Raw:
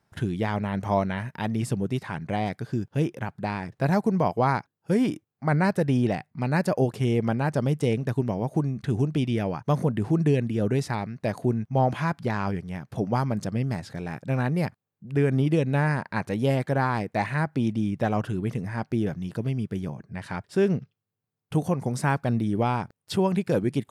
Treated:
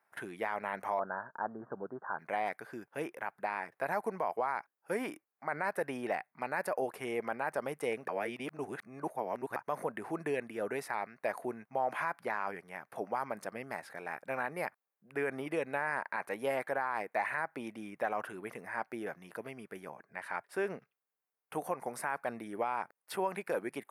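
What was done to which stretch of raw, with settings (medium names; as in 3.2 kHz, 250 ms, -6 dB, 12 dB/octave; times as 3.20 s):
0.99–2.19 s: steep low-pass 1.6 kHz 96 dB/octave
8.08–9.56 s: reverse
18.56–18.97 s: short-mantissa float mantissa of 8-bit
whole clip: high-pass 690 Hz 12 dB/octave; high-order bell 4.8 kHz -12.5 dB; peak limiter -22.5 dBFS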